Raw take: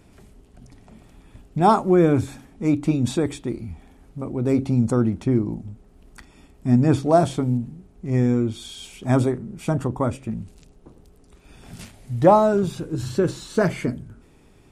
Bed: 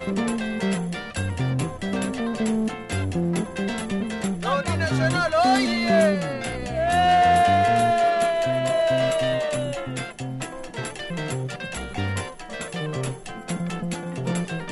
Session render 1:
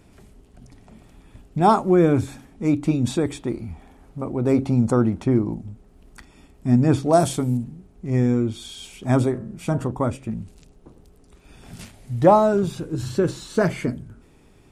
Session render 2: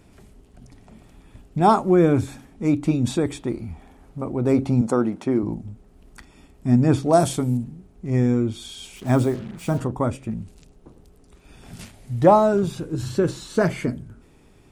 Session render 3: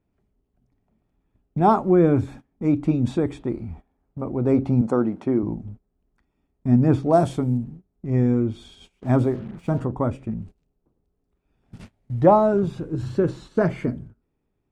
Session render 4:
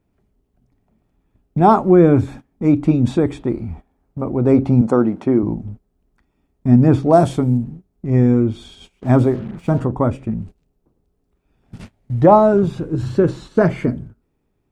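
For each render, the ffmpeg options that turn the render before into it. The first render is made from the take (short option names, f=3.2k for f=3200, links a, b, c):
-filter_complex "[0:a]asettb=1/sr,asplit=3[a][b][c];[a]atrim=end=3.354[d];[b]atrim=start=3.35:end=5.54,asetpts=PTS-STARTPTS,afade=t=in:d=0.004:c=qsin,afade=t=out:st=2.186:d=0.004:c=qsin,equalizer=f=890:w=0.7:g=5[e];[c]atrim=start=5.536[f];[d][e]acrossfade=d=0.004:c1=hsin:c2=qsin[g];[g][f]acrossfade=d=0.004:c1=qsin:c2=hsin,asettb=1/sr,asplit=3[h][i][j];[h]atrim=end=7.134[k];[i]atrim=start=7.13:end=7.64,asetpts=PTS-STARTPTS,afade=t=in:d=0.004:c=qsin,afade=t=out:st=0.506:d=0.004:c=qsin,aemphasis=mode=production:type=50fm[l];[j]atrim=start=7.636[m];[k][l]acrossfade=d=0.004:c1=hsin:c2=qsin[n];[n][m]acrossfade=d=0.004:c1=qsin:c2=hsin,asplit=3[o][p][q];[o]afade=t=out:st=9.33:d=0.02[r];[p]bandreject=f=59.08:t=h:w=4,bandreject=f=118.16:t=h:w=4,bandreject=f=177.24:t=h:w=4,bandreject=f=236.32:t=h:w=4,bandreject=f=295.4:t=h:w=4,bandreject=f=354.48:t=h:w=4,bandreject=f=413.56:t=h:w=4,bandreject=f=472.64:t=h:w=4,bandreject=f=531.72:t=h:w=4,bandreject=f=590.8:t=h:w=4,bandreject=f=649.88:t=h:w=4,bandreject=f=708.96:t=h:w=4,bandreject=f=768.04:t=h:w=4,bandreject=f=827.12:t=h:w=4,bandreject=f=886.2:t=h:w=4,bandreject=f=945.28:t=h:w=4,bandreject=f=1.00436k:t=h:w=4,bandreject=f=1.06344k:t=h:w=4,bandreject=f=1.12252k:t=h:w=4,bandreject=f=1.1816k:t=h:w=4,bandreject=f=1.24068k:t=h:w=4,bandreject=f=1.29976k:t=h:w=4,bandreject=f=1.35884k:t=h:w=4,bandreject=f=1.41792k:t=h:w=4,bandreject=f=1.477k:t=h:w=4,bandreject=f=1.53608k:t=h:w=4,bandreject=f=1.59516k:t=h:w=4,bandreject=f=1.65424k:t=h:w=4,bandreject=f=1.71332k:t=h:w=4,bandreject=f=1.7724k:t=h:w=4,afade=t=in:st=9.33:d=0.02,afade=t=out:st=9.9:d=0.02[s];[q]afade=t=in:st=9.9:d=0.02[t];[r][s][t]amix=inputs=3:normalize=0"
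-filter_complex "[0:a]asettb=1/sr,asplit=3[a][b][c];[a]atrim=end=4.814[d];[b]atrim=start=4.81:end=5.43,asetpts=PTS-STARTPTS,afade=t=in:d=0.004:c=qsin,afade=t=out:st=0.616:d=0.004:c=qsin,highpass=220[e];[c]atrim=start=5.426[f];[d][e]acrossfade=d=0.004:c1=hsin:c2=qsin[g];[g][f]acrossfade=d=0.004:c1=qsin:c2=hsin,asettb=1/sr,asplit=3[h][i][j];[h]atrim=end=8.964[k];[i]atrim=start=8.96:end=9.8,asetpts=PTS-STARTPTS,afade=t=in:d=0.004:c=qsin,afade=t=out:st=0.836:d=0.004:c=qsin,acrusher=bits=6:mix=0:aa=0.5[l];[j]atrim=start=9.796[m];[k][l]acrossfade=d=0.004:c1=hsin:c2=qsin[n];[n][m]acrossfade=d=0.004:c1=qsin:c2=hsin"
-af "agate=range=-21dB:threshold=-38dB:ratio=16:detection=peak,lowpass=f=1.4k:p=1"
-af "volume=6dB,alimiter=limit=-1dB:level=0:latency=1"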